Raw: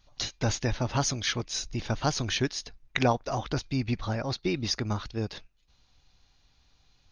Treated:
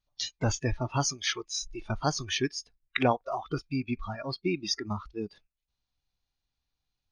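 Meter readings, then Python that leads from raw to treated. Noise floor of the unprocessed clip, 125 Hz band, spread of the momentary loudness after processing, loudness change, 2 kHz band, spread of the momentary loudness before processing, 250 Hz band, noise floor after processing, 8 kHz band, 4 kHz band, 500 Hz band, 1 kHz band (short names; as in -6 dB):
-67 dBFS, -3.5 dB, 8 LU, -1.5 dB, -1.0 dB, 8 LU, -1.5 dB, under -85 dBFS, -0.5 dB, -1.5 dB, -1.0 dB, -0.5 dB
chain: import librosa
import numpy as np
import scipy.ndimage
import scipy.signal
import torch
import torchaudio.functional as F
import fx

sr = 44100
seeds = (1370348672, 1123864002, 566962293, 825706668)

y = fx.noise_reduce_blind(x, sr, reduce_db=20)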